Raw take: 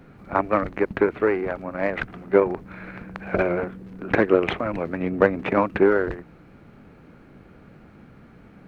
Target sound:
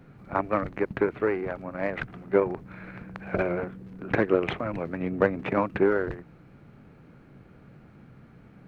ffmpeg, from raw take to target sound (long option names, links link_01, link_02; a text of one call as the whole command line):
ffmpeg -i in.wav -af "equalizer=frequency=130:width_type=o:width=0.64:gain=6.5,volume=-5dB" out.wav